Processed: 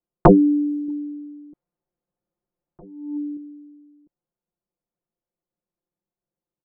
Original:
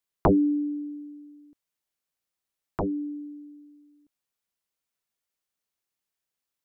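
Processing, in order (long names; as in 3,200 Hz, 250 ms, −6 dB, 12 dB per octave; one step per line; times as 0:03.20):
0:00.88–0:03.37: compressor whose output falls as the input rises −36 dBFS, ratio −0.5
comb filter 5.7 ms, depth 82%
low-pass that shuts in the quiet parts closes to 540 Hz, open at −26 dBFS
level +7 dB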